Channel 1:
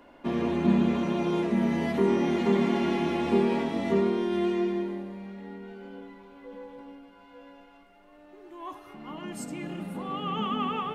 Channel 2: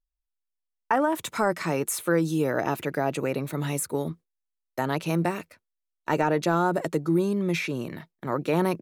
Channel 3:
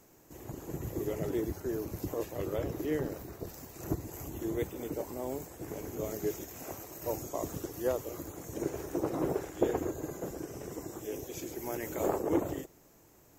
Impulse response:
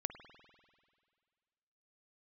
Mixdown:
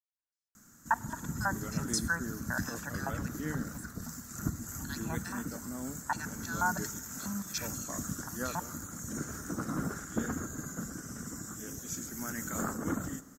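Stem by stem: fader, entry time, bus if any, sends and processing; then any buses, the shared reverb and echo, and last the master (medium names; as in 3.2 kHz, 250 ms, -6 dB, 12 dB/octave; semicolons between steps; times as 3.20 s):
mute
-1.5 dB, 0.00 s, send -9.5 dB, LFO band-pass square 3.1 Hz 870–5000 Hz; comb 1.2 ms, depth 81%; trance gate ".xxxxx.x.x.xxx." 96 bpm -24 dB
-3.0 dB, 0.55 s, send -4.5 dB, none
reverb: on, RT60 2.0 s, pre-delay 49 ms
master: FFT filter 130 Hz 0 dB, 230 Hz +9 dB, 360 Hz -14 dB, 910 Hz -9 dB, 1.4 kHz +11 dB, 2.5 kHz -10 dB, 7.1 kHz +9 dB, 15 kHz -2 dB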